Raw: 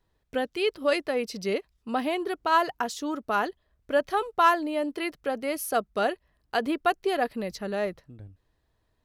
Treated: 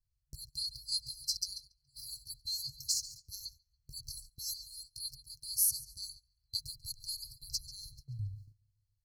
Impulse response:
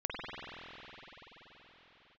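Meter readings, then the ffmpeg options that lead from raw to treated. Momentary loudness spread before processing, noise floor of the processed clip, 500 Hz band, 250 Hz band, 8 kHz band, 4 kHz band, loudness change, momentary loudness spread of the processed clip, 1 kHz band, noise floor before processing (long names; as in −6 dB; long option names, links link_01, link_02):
9 LU, −81 dBFS, below −40 dB, below −35 dB, +7.0 dB, +0.5 dB, −9.5 dB, 14 LU, below −40 dB, −74 dBFS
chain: -filter_complex "[0:a]asplit=2[link_01][link_02];[link_02]adelay=140,lowpass=frequency=5000:poles=1,volume=-13dB,asplit=2[link_03][link_04];[link_04]adelay=140,lowpass=frequency=5000:poles=1,volume=0.55,asplit=2[link_05][link_06];[link_06]adelay=140,lowpass=frequency=5000:poles=1,volume=0.55,asplit=2[link_07][link_08];[link_08]adelay=140,lowpass=frequency=5000:poles=1,volume=0.55,asplit=2[link_09][link_10];[link_10]adelay=140,lowpass=frequency=5000:poles=1,volume=0.55,asplit=2[link_11][link_12];[link_12]adelay=140,lowpass=frequency=5000:poles=1,volume=0.55[link_13];[link_01][link_03][link_05][link_07][link_09][link_11][link_13]amix=inputs=7:normalize=0,afftfilt=real='re*(1-between(b*sr/4096,140,4100))':imag='im*(1-between(b*sr/4096,140,4100))':win_size=4096:overlap=0.75,agate=range=-16dB:threshold=-58dB:ratio=16:detection=peak,volume=7dB"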